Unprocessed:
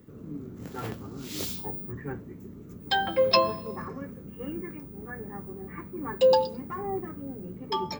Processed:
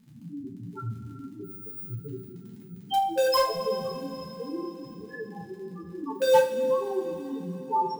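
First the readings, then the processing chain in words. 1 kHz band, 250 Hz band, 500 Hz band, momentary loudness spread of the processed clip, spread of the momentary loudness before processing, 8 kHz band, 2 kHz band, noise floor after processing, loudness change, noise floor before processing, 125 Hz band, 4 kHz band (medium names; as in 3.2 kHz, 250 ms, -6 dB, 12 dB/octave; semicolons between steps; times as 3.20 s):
+2.5 dB, 0.0 dB, +1.0 dB, 18 LU, 18 LU, no reading, -3.0 dB, -46 dBFS, +1.0 dB, -45 dBFS, 0.0 dB, -3.5 dB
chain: loudest bins only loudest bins 2; crackle 63 per s -49 dBFS; in parallel at -10.5 dB: bit crusher 4-bit; on the sum: two-slope reverb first 0.35 s, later 4.2 s, from -18 dB, DRR -3.5 dB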